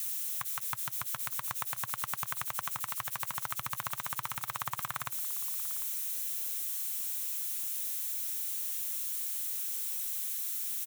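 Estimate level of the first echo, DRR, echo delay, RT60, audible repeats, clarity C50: -19.0 dB, none, 0.748 s, none, 1, none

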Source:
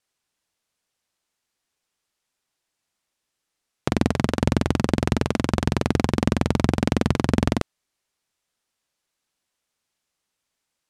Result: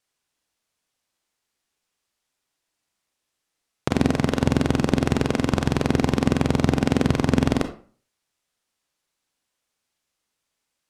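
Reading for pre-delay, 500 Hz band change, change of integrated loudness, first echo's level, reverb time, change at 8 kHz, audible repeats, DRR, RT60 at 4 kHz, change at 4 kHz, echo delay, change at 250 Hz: 30 ms, +1.5 dB, +1.0 dB, none, 0.40 s, +0.5 dB, none, 8.0 dB, 0.30 s, +1.0 dB, none, +1.5 dB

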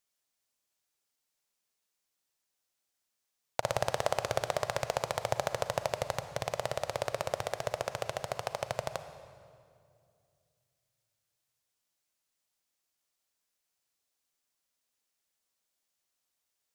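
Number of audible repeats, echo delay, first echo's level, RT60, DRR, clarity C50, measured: none, none, none, 2.4 s, 10.0 dB, 10.5 dB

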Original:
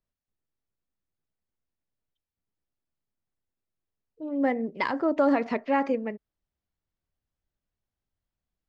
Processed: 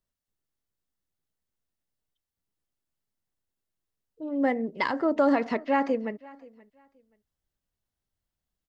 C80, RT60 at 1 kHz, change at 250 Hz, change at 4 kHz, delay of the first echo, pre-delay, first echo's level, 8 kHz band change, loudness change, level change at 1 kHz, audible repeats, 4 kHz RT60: none, none, 0.0 dB, +2.0 dB, 0.527 s, none, -23.0 dB, n/a, 0.0 dB, +0.5 dB, 1, none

